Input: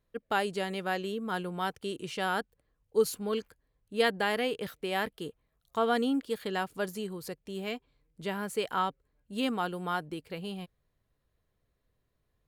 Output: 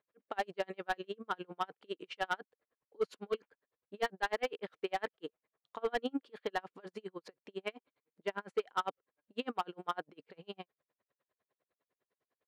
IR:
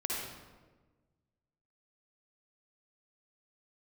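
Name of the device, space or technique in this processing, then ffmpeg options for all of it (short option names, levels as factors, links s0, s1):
helicopter radio: -af "highpass=380,lowpass=2600,aeval=exprs='val(0)*pow(10,-40*(0.5-0.5*cos(2*PI*9.9*n/s))/20)':c=same,asoftclip=type=hard:threshold=0.0335,volume=1.68"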